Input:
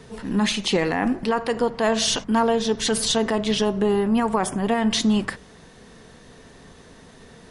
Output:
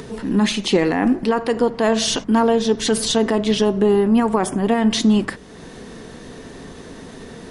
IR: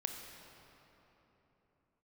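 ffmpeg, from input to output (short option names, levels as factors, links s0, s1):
-filter_complex "[0:a]equalizer=f=310:w=1.2:g=6.5,asplit=2[s0][s1];[s1]acompressor=mode=upward:threshold=0.0794:ratio=2.5,volume=0.794[s2];[s0][s2]amix=inputs=2:normalize=0,volume=0.631"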